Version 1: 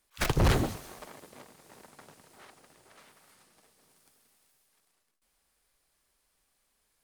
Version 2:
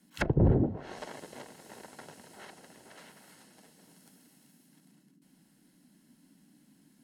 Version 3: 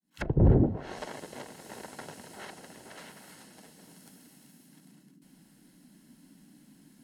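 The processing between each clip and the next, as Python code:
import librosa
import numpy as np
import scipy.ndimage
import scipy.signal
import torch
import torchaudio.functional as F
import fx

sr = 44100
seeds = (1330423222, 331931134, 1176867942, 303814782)

y1 = fx.env_lowpass_down(x, sr, base_hz=400.0, full_db=-26.5)
y1 = fx.notch_comb(y1, sr, f0_hz=1200.0)
y1 = fx.dmg_noise_band(y1, sr, seeds[0], low_hz=150.0, high_hz=300.0, level_db=-69.0)
y1 = F.gain(torch.from_numpy(y1), 5.5).numpy()
y2 = fx.fade_in_head(y1, sr, length_s=0.56)
y2 = fx.low_shelf(y2, sr, hz=61.0, db=7.0)
y2 = fx.rider(y2, sr, range_db=5, speed_s=2.0)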